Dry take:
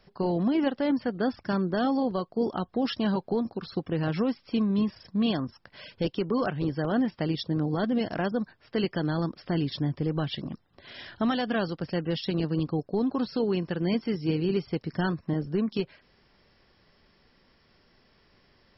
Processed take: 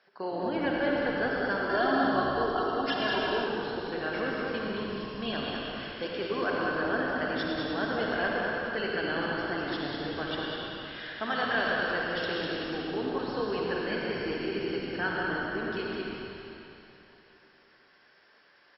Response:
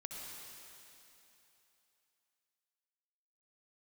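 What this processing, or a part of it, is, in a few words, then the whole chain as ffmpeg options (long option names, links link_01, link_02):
station announcement: -filter_complex "[0:a]highpass=440,lowpass=4900,equalizer=frequency=1600:width_type=o:width=0.3:gain=9.5,aecho=1:1:55.39|198.3:0.251|0.562[link_01];[1:a]atrim=start_sample=2205[link_02];[link_01][link_02]afir=irnorm=-1:irlink=0,asettb=1/sr,asplit=3[link_03][link_04][link_05];[link_03]atrim=end=1.694[link_06];[link_04]atrim=start=1.69:end=3.46,asetpts=PTS-STARTPTS,afade=type=in:duration=0.004:curve=qsin,afade=type=out:start_time=1.766:duration=0.004:curve=qsin,aecho=1:1:2.9:0.9,atrim=end_sample=78057[link_07];[link_05]atrim=start=3.456[link_08];[link_06][link_07]acrossfade=duration=0.004:curve1=hsin:curve2=qsin[link_09];[link_09][link_08]acrossfade=duration=0.004:curve1=qsin:curve2=hsin,asplit=9[link_10][link_11][link_12][link_13][link_14][link_15][link_16][link_17][link_18];[link_11]adelay=108,afreqshift=-64,volume=-11dB[link_19];[link_12]adelay=216,afreqshift=-128,volume=-15dB[link_20];[link_13]adelay=324,afreqshift=-192,volume=-19dB[link_21];[link_14]adelay=432,afreqshift=-256,volume=-23dB[link_22];[link_15]adelay=540,afreqshift=-320,volume=-27.1dB[link_23];[link_16]adelay=648,afreqshift=-384,volume=-31.1dB[link_24];[link_17]adelay=756,afreqshift=-448,volume=-35.1dB[link_25];[link_18]adelay=864,afreqshift=-512,volume=-39.1dB[link_26];[link_10][link_19][link_20][link_21][link_22][link_23][link_24][link_25][link_26]amix=inputs=9:normalize=0,volume=2.5dB"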